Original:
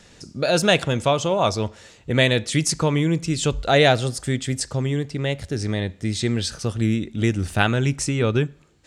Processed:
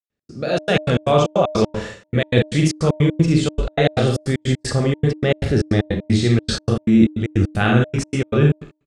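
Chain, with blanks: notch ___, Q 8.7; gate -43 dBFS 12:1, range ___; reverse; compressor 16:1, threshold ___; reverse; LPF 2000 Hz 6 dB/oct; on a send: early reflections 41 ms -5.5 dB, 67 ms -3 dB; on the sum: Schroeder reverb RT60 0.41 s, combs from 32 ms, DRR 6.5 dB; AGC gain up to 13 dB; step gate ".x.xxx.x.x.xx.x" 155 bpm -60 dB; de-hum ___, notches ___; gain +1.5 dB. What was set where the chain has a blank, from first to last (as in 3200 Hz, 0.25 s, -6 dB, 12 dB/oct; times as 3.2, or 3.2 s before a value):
940 Hz, -38 dB, -27 dBFS, 306.5 Hz, 3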